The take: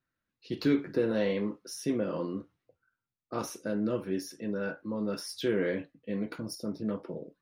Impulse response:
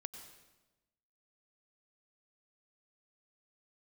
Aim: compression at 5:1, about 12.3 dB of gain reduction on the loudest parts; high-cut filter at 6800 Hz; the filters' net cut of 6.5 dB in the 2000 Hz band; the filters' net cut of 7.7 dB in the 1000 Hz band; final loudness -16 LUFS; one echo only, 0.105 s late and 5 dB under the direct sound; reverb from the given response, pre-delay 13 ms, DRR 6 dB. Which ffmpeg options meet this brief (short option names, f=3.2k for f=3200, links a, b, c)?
-filter_complex "[0:a]lowpass=6.8k,equalizer=f=1k:t=o:g=-9,equalizer=f=2k:t=o:g=-5,acompressor=threshold=-36dB:ratio=5,aecho=1:1:105:0.562,asplit=2[a][b];[1:a]atrim=start_sample=2205,adelay=13[c];[b][c]afir=irnorm=-1:irlink=0,volume=-2.5dB[d];[a][d]amix=inputs=2:normalize=0,volume=23.5dB"